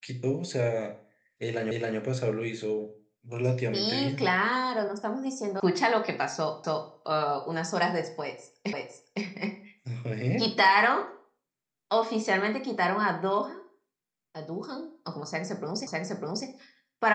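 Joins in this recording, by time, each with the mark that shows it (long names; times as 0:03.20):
0:01.71: the same again, the last 0.27 s
0:05.60: cut off before it has died away
0:06.64: the same again, the last 0.28 s
0:08.73: the same again, the last 0.51 s
0:15.87: the same again, the last 0.6 s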